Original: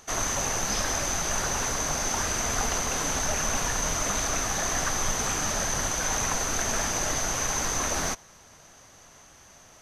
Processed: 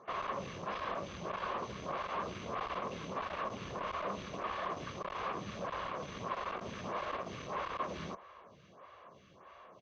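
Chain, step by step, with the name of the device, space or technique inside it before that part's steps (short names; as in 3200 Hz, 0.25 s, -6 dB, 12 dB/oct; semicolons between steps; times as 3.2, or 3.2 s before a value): comb 1.8 ms, depth 31%; vibe pedal into a guitar amplifier (photocell phaser 1.6 Hz; tube stage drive 37 dB, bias 0.5; speaker cabinet 85–3400 Hz, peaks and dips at 190 Hz +7 dB, 370 Hz +5 dB, 540 Hz +4 dB, 1100 Hz +9 dB, 1700 Hz -4 dB)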